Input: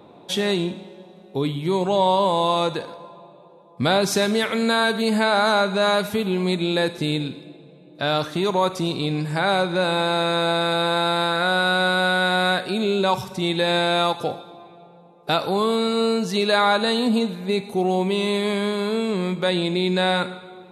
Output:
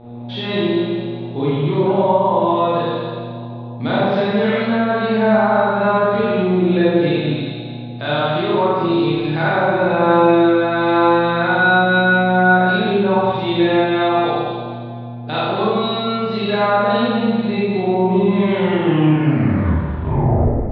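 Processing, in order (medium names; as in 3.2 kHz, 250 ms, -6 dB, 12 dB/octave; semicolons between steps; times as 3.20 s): tape stop on the ending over 2.39 s; level rider gain up to 10 dB; mains buzz 120 Hz, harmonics 7, -36 dBFS -3 dB/octave; steep low-pass 4 kHz 36 dB/octave; on a send: echo whose repeats swap between lows and highs 109 ms, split 1.1 kHz, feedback 54%, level -3 dB; on the sum: low-pass that closes with the level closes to 1.3 kHz, closed at -6.5 dBFS; in parallel at -2.5 dB: compression, threshold -26 dBFS, peak gain reduction 18.5 dB; on the sum: Schroeder reverb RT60 1.2 s, combs from 26 ms, DRR -8 dB; trim -12.5 dB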